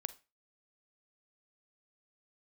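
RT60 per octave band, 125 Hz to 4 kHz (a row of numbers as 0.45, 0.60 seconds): 0.30, 0.25, 0.30, 0.30, 0.30, 0.25 seconds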